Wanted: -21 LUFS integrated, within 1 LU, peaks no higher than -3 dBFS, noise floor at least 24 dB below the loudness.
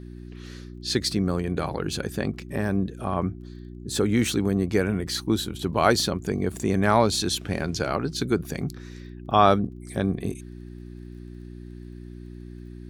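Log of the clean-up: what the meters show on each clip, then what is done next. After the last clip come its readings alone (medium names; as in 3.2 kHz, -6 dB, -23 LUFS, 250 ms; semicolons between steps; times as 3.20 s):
tick rate 28 per s; hum 60 Hz; highest harmonic 360 Hz; hum level -38 dBFS; loudness -25.0 LUFS; peak level -3.5 dBFS; loudness target -21.0 LUFS
-> de-click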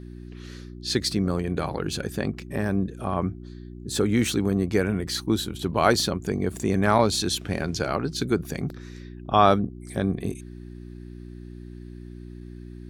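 tick rate 0.23 per s; hum 60 Hz; highest harmonic 360 Hz; hum level -38 dBFS
-> de-hum 60 Hz, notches 6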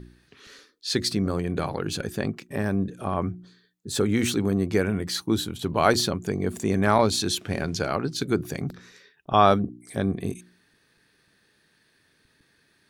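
hum not found; loudness -25.5 LUFS; peak level -3.5 dBFS; loudness target -21.0 LUFS
-> trim +4.5 dB; peak limiter -3 dBFS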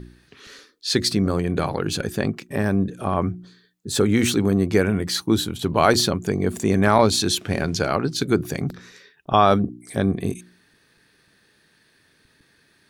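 loudness -21.5 LUFS; peak level -3.0 dBFS; noise floor -61 dBFS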